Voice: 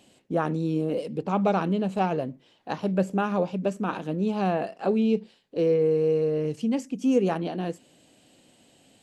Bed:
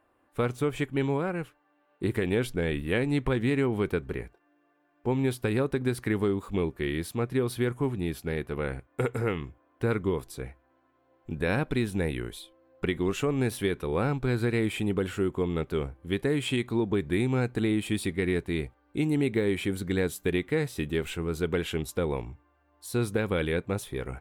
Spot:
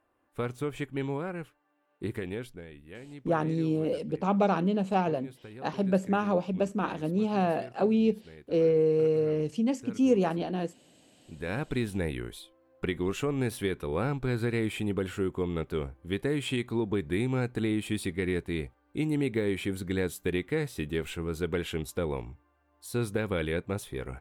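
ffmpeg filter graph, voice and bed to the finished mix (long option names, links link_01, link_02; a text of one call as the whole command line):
ffmpeg -i stem1.wav -i stem2.wav -filter_complex "[0:a]adelay=2950,volume=-1.5dB[link_01];[1:a]volume=11.5dB,afade=type=out:start_time=2.01:duration=0.67:silence=0.199526,afade=type=in:start_time=11.18:duration=0.58:silence=0.149624[link_02];[link_01][link_02]amix=inputs=2:normalize=0" out.wav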